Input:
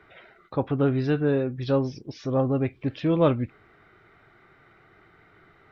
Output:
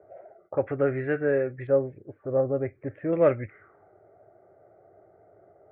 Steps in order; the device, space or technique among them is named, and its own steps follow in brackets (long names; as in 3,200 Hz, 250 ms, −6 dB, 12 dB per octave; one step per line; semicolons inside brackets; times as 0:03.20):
0:01.67–0:03.13: Bessel low-pass filter 1,000 Hz, order 2
envelope filter bass rig (envelope-controlled low-pass 630–2,000 Hz up, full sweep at −28.5 dBFS; loudspeaker in its box 78–2,200 Hz, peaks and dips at 100 Hz +5 dB, 150 Hz −5 dB, 240 Hz −7 dB, 400 Hz +4 dB, 570 Hz +10 dB, 1,000 Hz −9 dB)
high-shelf EQ 2,800 Hz +8 dB
level −5 dB